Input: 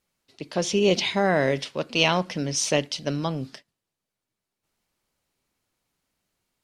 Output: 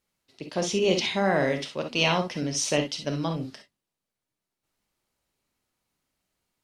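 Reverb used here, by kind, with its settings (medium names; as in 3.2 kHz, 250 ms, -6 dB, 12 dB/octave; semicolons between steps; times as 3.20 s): gated-style reverb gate 80 ms rising, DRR 5 dB; trim -3 dB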